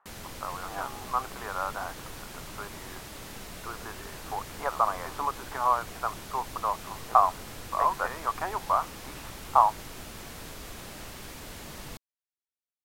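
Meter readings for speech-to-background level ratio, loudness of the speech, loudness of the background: 12.5 dB, -29.5 LUFS, -42.0 LUFS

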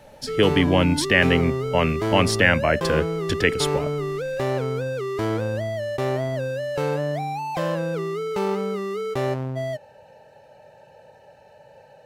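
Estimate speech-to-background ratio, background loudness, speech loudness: 5.5 dB, -26.5 LUFS, -21.0 LUFS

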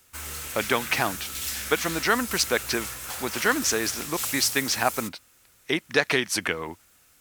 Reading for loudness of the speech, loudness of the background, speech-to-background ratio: -26.0 LUFS, -31.5 LUFS, 5.5 dB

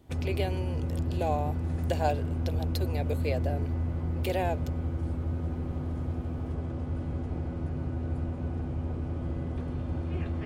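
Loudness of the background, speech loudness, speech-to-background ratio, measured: -33.0 LUFS, -35.0 LUFS, -2.0 dB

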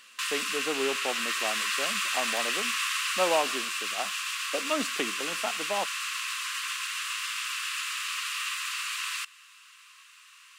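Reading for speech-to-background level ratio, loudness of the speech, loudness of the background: -4.5 dB, -34.0 LUFS, -29.5 LUFS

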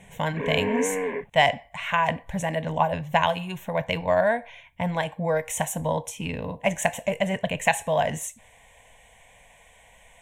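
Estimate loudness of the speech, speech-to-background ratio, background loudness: -26.0 LUFS, 2.5 dB, -28.5 LUFS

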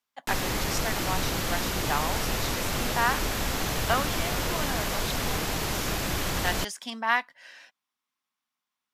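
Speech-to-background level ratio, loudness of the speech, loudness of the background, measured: -3.5 dB, -32.5 LUFS, -29.0 LUFS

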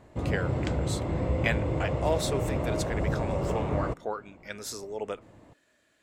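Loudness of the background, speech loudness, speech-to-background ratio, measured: -30.5 LUFS, -35.0 LUFS, -4.5 dB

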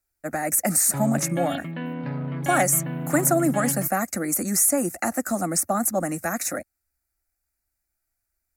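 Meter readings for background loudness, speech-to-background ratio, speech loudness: -31.0 LUFS, 8.0 dB, -23.0 LUFS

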